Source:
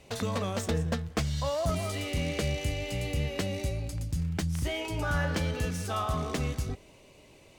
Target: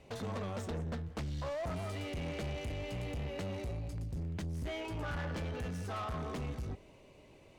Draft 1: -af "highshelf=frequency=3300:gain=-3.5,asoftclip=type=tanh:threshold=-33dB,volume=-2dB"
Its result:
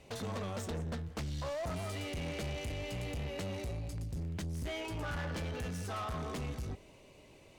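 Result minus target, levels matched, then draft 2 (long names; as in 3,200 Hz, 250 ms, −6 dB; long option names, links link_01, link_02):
8,000 Hz band +5.0 dB
-af "highshelf=frequency=3300:gain=-10.5,asoftclip=type=tanh:threshold=-33dB,volume=-2dB"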